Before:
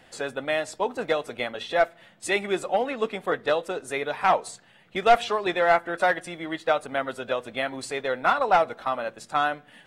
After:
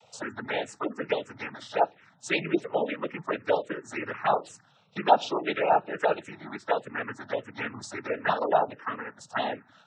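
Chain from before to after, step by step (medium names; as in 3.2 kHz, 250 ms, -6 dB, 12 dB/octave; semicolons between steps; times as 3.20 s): noise-vocoded speech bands 12; touch-sensitive phaser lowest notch 280 Hz, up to 2 kHz, full sweep at -18.5 dBFS; spectral gate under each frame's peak -30 dB strong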